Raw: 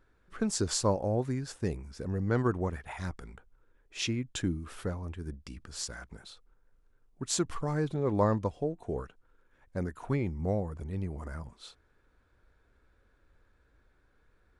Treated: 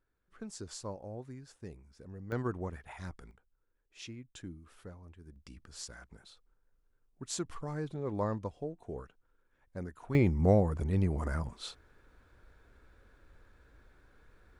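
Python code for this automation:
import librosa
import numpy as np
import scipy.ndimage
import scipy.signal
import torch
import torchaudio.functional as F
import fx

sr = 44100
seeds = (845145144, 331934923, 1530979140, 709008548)

y = fx.gain(x, sr, db=fx.steps((0.0, -14.0), (2.32, -6.5), (3.31, -14.0), (5.36, -7.0), (10.15, 6.0)))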